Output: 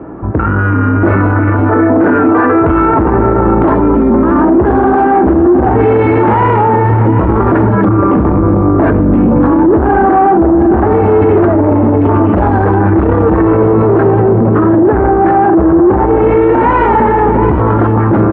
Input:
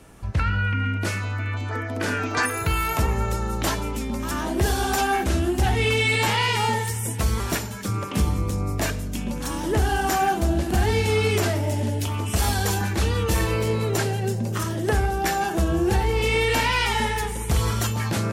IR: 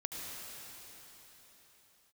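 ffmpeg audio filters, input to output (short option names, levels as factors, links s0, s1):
-filter_complex "[0:a]asoftclip=type=tanh:threshold=0.0501,highpass=f=150:p=1,equalizer=f=320:w=3:g=11,asplit=2[s0][s1];[s1]aecho=0:1:718:0.251[s2];[s0][s2]amix=inputs=2:normalize=0,dynaudnorm=f=470:g=5:m=5.31,lowpass=f=1300:w=0.5412,lowpass=f=1300:w=1.3066,alimiter=level_in=12.6:limit=0.891:release=50:level=0:latency=1,volume=0.891"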